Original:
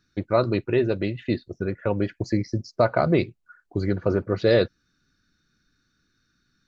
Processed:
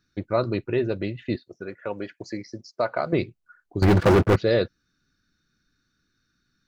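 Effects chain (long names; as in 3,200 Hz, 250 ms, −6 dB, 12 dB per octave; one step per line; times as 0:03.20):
0:01.36–0:03.13: high-pass filter 520 Hz 6 dB per octave
0:03.82–0:04.36: leveller curve on the samples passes 5
level −2.5 dB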